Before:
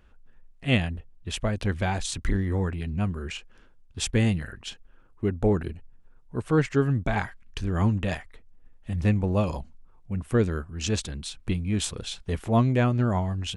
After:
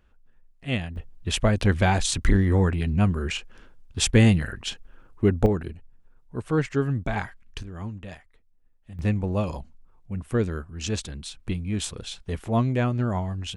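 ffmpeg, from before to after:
ffmpeg -i in.wav -af "asetnsamples=nb_out_samples=441:pad=0,asendcmd='0.96 volume volume 6dB;5.46 volume volume -1.5dB;7.63 volume volume -11.5dB;8.99 volume volume -1.5dB',volume=-4.5dB" out.wav

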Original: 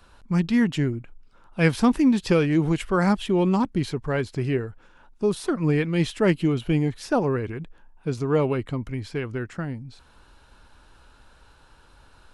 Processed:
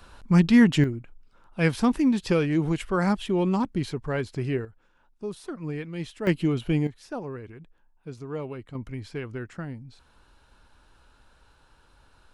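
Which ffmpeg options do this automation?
ffmpeg -i in.wav -af "asetnsamples=nb_out_samples=441:pad=0,asendcmd='0.84 volume volume -3dB;4.65 volume volume -11dB;6.27 volume volume -2dB;6.87 volume volume -12dB;8.75 volume volume -5dB',volume=4dB" out.wav

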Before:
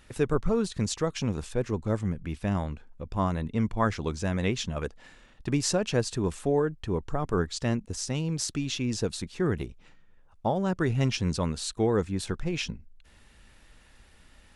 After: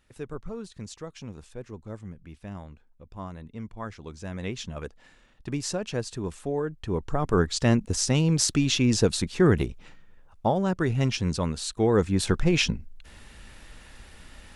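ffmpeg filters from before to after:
ffmpeg -i in.wav -af "volume=15dB,afade=type=in:start_time=4.02:duration=0.63:silence=0.446684,afade=type=in:start_time=6.57:duration=1.34:silence=0.266073,afade=type=out:start_time=9.64:duration=1.16:silence=0.473151,afade=type=in:start_time=11.77:duration=0.61:silence=0.421697" out.wav

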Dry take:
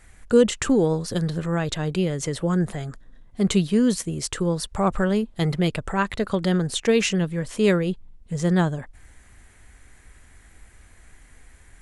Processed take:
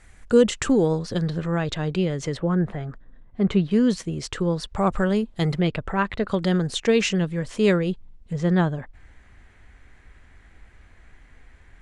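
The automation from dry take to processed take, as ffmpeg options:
ffmpeg -i in.wav -af "asetnsamples=nb_out_samples=441:pad=0,asendcmd='0.99 lowpass f 5100;2.37 lowpass f 2200;3.71 lowpass f 5000;4.78 lowpass f 8100;5.61 lowpass f 3500;6.29 lowpass f 6900;8.33 lowpass f 3700',lowpass=8400" out.wav

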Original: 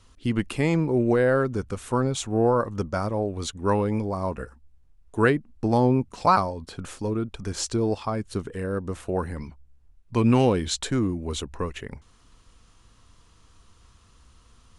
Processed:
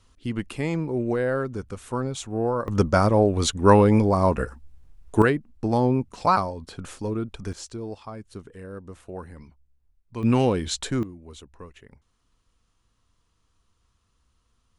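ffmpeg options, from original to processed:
ffmpeg -i in.wav -af "asetnsamples=nb_out_samples=441:pad=0,asendcmd='2.68 volume volume 8dB;5.22 volume volume -1dB;7.53 volume volume -10dB;10.23 volume volume -1dB;11.03 volume volume -13.5dB',volume=-4dB" out.wav

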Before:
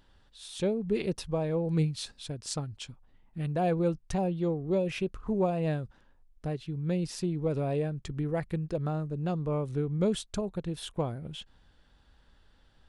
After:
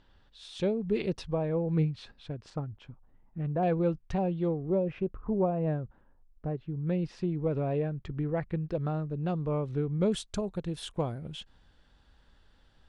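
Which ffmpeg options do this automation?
ffmpeg -i in.wav -af "asetnsamples=nb_out_samples=441:pad=0,asendcmd='1.33 lowpass f 2300;2.5 lowpass f 1400;3.63 lowpass f 3200;4.7 lowpass f 1300;6.87 lowpass f 2500;8.64 lowpass f 3900;10.12 lowpass f 9800',lowpass=4900" out.wav

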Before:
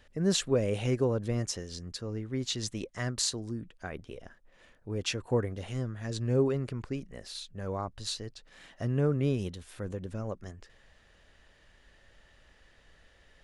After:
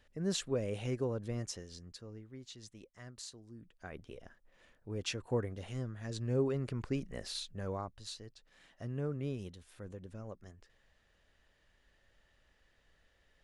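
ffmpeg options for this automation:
ffmpeg -i in.wav -af "volume=12dB,afade=type=out:start_time=1.53:duration=0.89:silence=0.316228,afade=type=in:start_time=3.49:duration=0.55:silence=0.251189,afade=type=in:start_time=6.47:duration=0.73:silence=0.421697,afade=type=out:start_time=7.2:duration=0.79:silence=0.251189" out.wav

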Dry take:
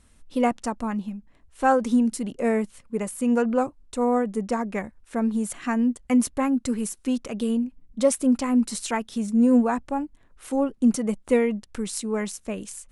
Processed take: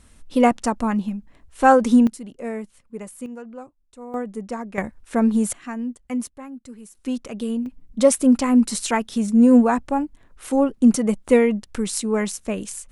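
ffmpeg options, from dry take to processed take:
ffmpeg -i in.wav -af "asetnsamples=nb_out_samples=441:pad=0,asendcmd='2.07 volume volume -6.5dB;3.26 volume volume -15dB;4.14 volume volume -4dB;4.78 volume volume 6dB;5.53 volume volume -6dB;6.27 volume volume -14dB;6.95 volume volume -1dB;7.66 volume volume 5dB',volume=6dB" out.wav

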